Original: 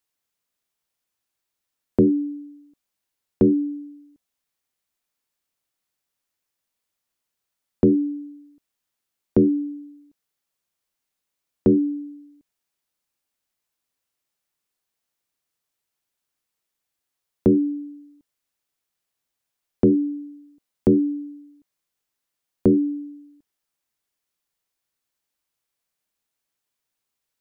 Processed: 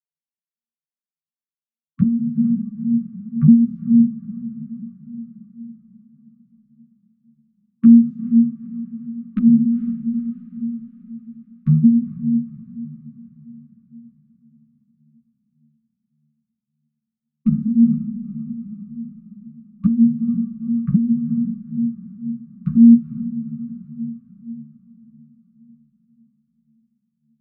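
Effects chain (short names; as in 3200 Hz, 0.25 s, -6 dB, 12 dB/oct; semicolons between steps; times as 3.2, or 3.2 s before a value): arpeggiated vocoder bare fifth, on D#3, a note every 0.182 s; HPF 150 Hz 6 dB/oct; low-pass opened by the level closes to 420 Hz, open at -19.5 dBFS; gate -55 dBFS, range -24 dB; brick-wall FIR band-stop 240–1100 Hz; diffused feedback echo 0.471 s, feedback 53%, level -14 dB; on a send at -14 dB: reverb RT60 0.55 s, pre-delay 6 ms; on the sum: maximiser +25 dB; ensemble effect; gain -3 dB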